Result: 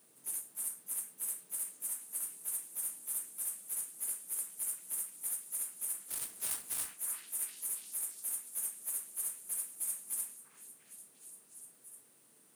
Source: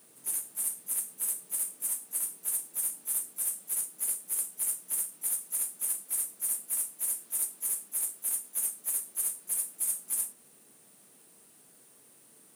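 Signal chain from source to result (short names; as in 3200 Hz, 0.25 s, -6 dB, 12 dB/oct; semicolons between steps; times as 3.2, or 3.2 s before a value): 6.08–6.94 half-waves squared off; delay with a stepping band-pass 0.348 s, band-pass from 1300 Hz, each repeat 0.7 oct, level -3.5 dB; core saturation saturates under 2000 Hz; gain -6.5 dB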